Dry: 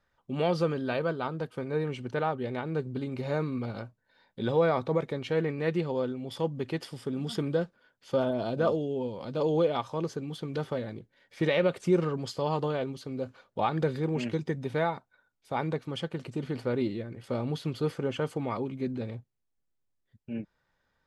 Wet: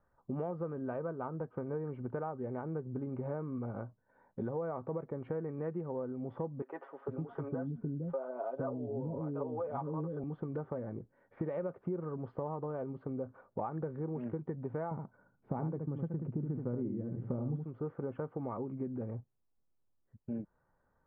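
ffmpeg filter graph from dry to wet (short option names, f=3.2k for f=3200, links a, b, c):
-filter_complex "[0:a]asettb=1/sr,asplit=3[a][b][c];[a]atrim=end=6.624[d];[b]atrim=start=6.62:end=10.24,asetpts=PTS-STARTPTS,afade=t=in:d=0.004:c=qsin,afade=t=out:st=3.616:d=0.004:c=qsin,aecho=1:1:7.3:0.64,atrim=end_sample=159642,acrossover=split=400|4200[e][f][g];[g]adelay=370[h];[e]adelay=460[i];[i][f][h]amix=inputs=3:normalize=0,atrim=end_sample=159642[j];[c]atrim=start=10.236[k];[d][j]acrossfade=d=0.004:c1=hsin:c2=qsin[l];[l][k]acrossfade=d=0.004:c1=qsin:c2=hsin,asettb=1/sr,asplit=3[m][n][o];[m]atrim=end=14.914[p];[n]atrim=start=14.91:end=17.65,asetpts=PTS-STARTPTS,afade=t=in:d=0.004:c=qsin,afade=t=out:st=2.736:d=0.004:c=qsin,equalizer=f=160:w=0.52:g=14.5,aecho=1:1:74:0.473,atrim=end_sample=120834[q];[o]atrim=start=17.646[r];[p][q]acrossfade=d=0.004:c1=hsin:c2=qsin[s];[s][r]acrossfade=d=0.004:c1=qsin:c2=hsin,lowpass=f=1.3k:w=0.5412,lowpass=f=1.3k:w=1.3066,acompressor=threshold=-37dB:ratio=6,volume=2dB"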